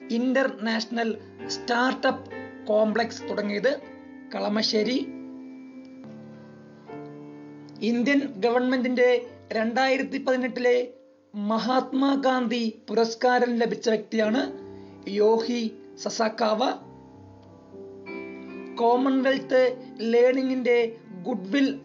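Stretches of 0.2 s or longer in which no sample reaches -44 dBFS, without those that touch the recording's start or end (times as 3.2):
11–11.34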